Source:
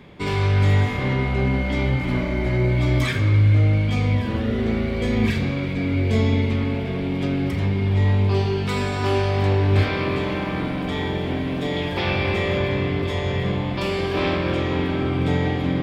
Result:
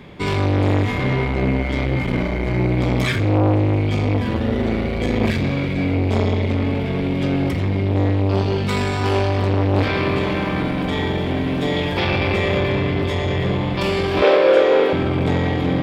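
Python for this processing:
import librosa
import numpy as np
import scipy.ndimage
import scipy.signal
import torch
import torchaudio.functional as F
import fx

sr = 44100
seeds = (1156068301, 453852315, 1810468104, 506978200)

y = fx.highpass_res(x, sr, hz=490.0, q=5.9, at=(14.22, 14.93))
y = fx.transformer_sat(y, sr, knee_hz=620.0)
y = y * librosa.db_to_amplitude(5.0)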